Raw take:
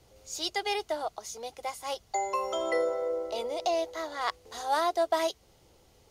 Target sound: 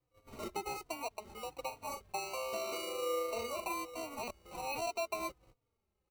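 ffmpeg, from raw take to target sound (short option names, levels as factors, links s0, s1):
-filter_complex "[0:a]agate=range=0.0631:threshold=0.002:ratio=16:detection=peak,lowpass=2900,equalizer=f=1800:w=1.1:g=-9,acompressor=threshold=0.00708:ratio=2.5,acrusher=samples=26:mix=1:aa=0.000001,asplit=3[s0][s1][s2];[s0]afade=t=out:st=1.7:d=0.02[s3];[s1]asplit=2[s4][s5];[s5]adelay=40,volume=0.422[s6];[s4][s6]amix=inputs=2:normalize=0,afade=t=in:st=1.7:d=0.02,afade=t=out:st=3.73:d=0.02[s7];[s2]afade=t=in:st=3.73:d=0.02[s8];[s3][s7][s8]amix=inputs=3:normalize=0,asplit=2[s9][s10];[s10]adelay=3.5,afreqshift=-1.3[s11];[s9][s11]amix=inputs=2:normalize=1,volume=1.88"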